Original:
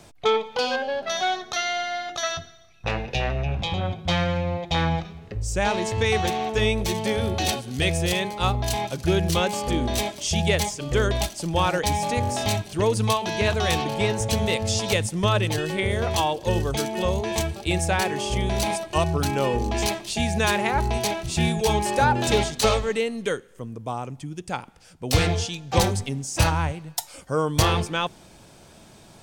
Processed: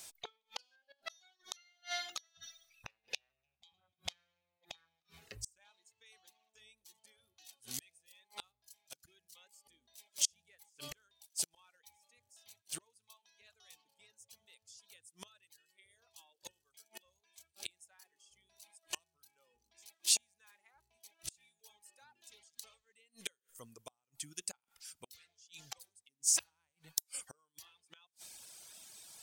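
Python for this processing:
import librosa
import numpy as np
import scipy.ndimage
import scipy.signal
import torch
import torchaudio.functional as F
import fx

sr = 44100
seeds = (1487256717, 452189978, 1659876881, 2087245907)

y = fx.gate_flip(x, sr, shuts_db=-19.0, range_db=-32)
y = scipy.signal.lfilter([1.0, -0.97], [1.0], y)
y = fx.dereverb_blind(y, sr, rt60_s=1.7)
y = F.gain(torch.from_numpy(y), 5.5).numpy()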